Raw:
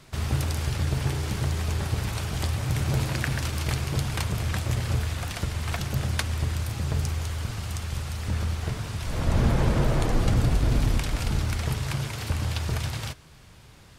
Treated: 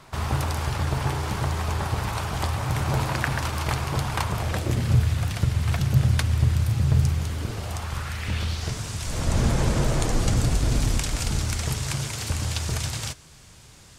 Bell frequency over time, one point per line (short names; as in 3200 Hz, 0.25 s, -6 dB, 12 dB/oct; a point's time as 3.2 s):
bell +10 dB 1.3 oct
4.38 s 960 Hz
4.99 s 120 Hz
7.08 s 120 Hz
7.82 s 880 Hz
8.79 s 7300 Hz